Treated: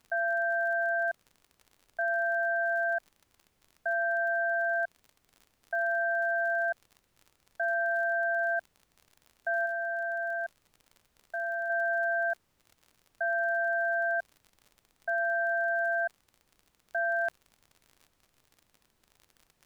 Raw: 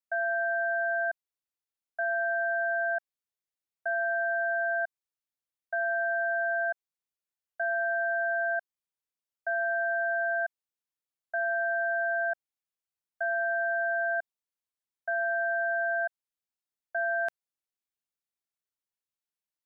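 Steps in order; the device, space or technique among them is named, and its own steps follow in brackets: 9.66–11.70 s: peaking EQ 1.1 kHz -5 dB 2.2 oct; vinyl LP (crackle 48 per s -43 dBFS; pink noise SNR 41 dB)

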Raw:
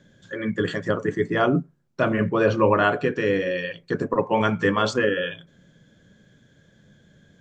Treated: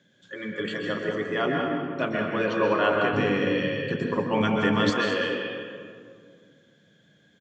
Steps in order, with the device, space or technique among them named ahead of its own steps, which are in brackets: PA in a hall (high-pass 160 Hz 12 dB/octave; peaking EQ 2.9 kHz +7 dB 1.3 oct; delay 200 ms -10 dB; reverberation RT60 2.1 s, pre-delay 119 ms, DRR 1 dB); 3.13–4.90 s: tone controls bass +11 dB, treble +3 dB; trim -7.5 dB

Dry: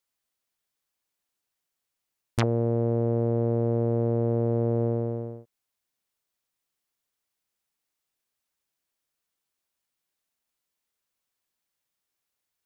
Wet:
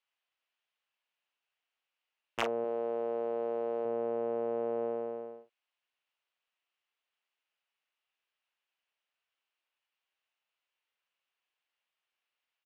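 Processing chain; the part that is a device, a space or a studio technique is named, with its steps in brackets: 2.64–3.85 s: tone controls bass -7 dB, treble +10 dB; megaphone (band-pass 620–3000 Hz; peaking EQ 2.8 kHz +8 dB 0.47 oct; hard clipper -17.5 dBFS, distortion -22 dB; doubling 39 ms -8.5 dB)

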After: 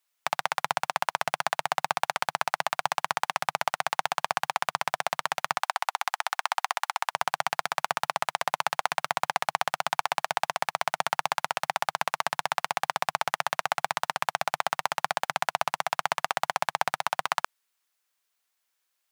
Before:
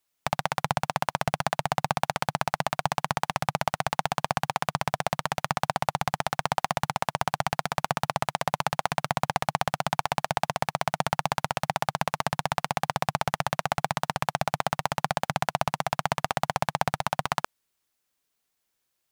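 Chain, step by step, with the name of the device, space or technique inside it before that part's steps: filter by subtraction (in parallel: low-pass 1.3 kHz 12 dB/octave + polarity flip); 5.63–7.12 s: on the sum: high-pass 740 Hz 24 dB/octave

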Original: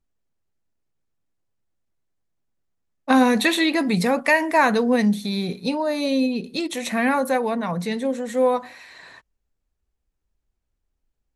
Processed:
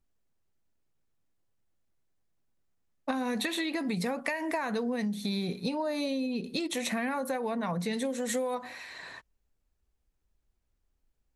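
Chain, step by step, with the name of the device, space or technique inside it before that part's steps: serial compression, leveller first (compression, threshold -19 dBFS, peak gain reduction 7.5 dB; compression, threshold -29 dBFS, peak gain reduction 11 dB); 7.93–8.55 s: treble shelf 2.9 kHz +9.5 dB

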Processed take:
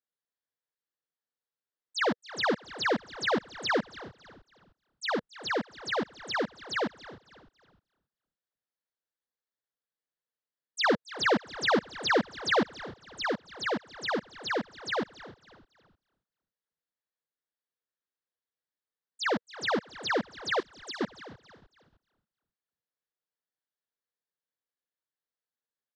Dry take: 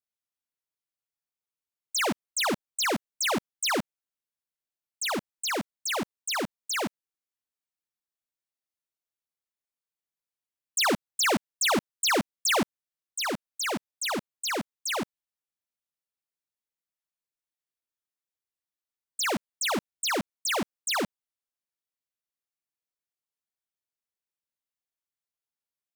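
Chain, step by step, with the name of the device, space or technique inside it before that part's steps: frequency-shifting delay pedal into a guitar cabinet (frequency-shifting echo 278 ms, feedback 34%, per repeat -130 Hz, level -18 dB; cabinet simulation 100–4600 Hz, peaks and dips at 480 Hz +7 dB, 1.7 kHz +6 dB, 2.5 kHz -10 dB); 20.60–21.01 s: differentiator; frequency-shifting echo 306 ms, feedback 39%, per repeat -98 Hz, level -21 dB; trim -1.5 dB

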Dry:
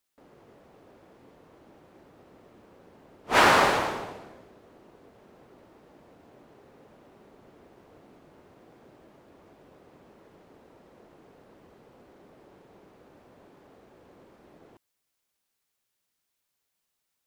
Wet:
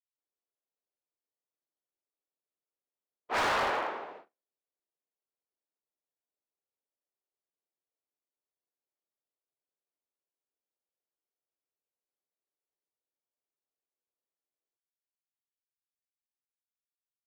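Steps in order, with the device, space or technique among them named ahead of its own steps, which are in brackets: walkie-talkie (band-pass 410–2500 Hz; hard clipper -22.5 dBFS, distortion -7 dB; gate -45 dBFS, range -43 dB); trim -3.5 dB

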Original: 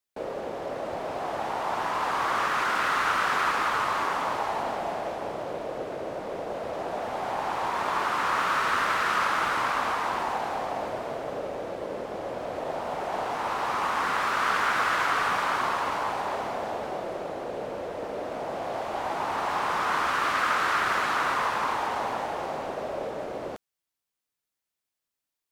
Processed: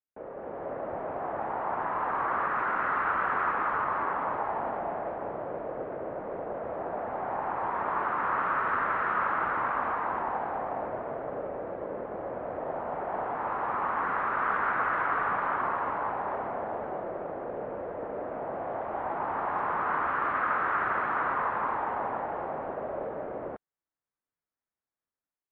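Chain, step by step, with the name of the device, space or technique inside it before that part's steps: action camera in a waterproof case (low-pass 1.8 kHz 24 dB/octave; level rider gain up to 6.5 dB; trim -8.5 dB; AAC 64 kbps 48 kHz)

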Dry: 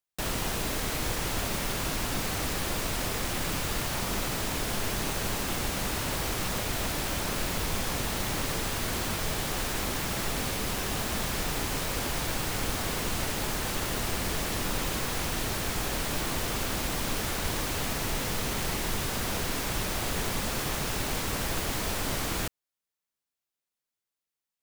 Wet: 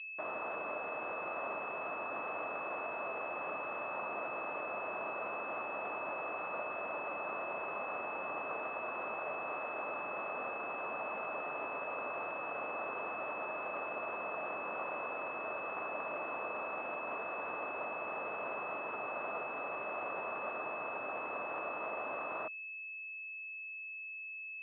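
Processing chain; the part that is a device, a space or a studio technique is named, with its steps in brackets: toy sound module (decimation joined by straight lines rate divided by 8×; class-D stage that switches slowly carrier 2.6 kHz; cabinet simulation 540–3700 Hz, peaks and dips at 620 Hz +6 dB, 1.2 kHz +7 dB, 3.3 kHz +7 dB); trim -5 dB

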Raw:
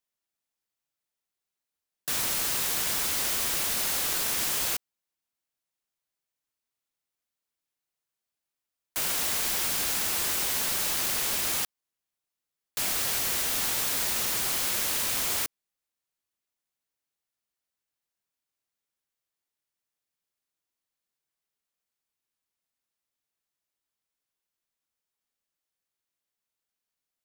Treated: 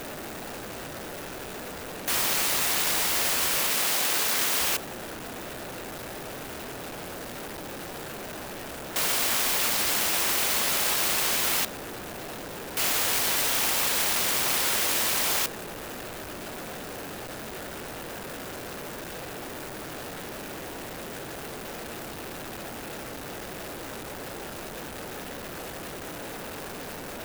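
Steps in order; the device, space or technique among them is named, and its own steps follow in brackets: local Wiener filter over 41 samples; early CD player with a faulty converter (jump at every zero crossing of -34.5 dBFS; sampling jitter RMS 0.043 ms); bass shelf 230 Hz -9 dB; 3.67–4.61 s: high-pass 140 Hz 6 dB/octave; trim +5.5 dB

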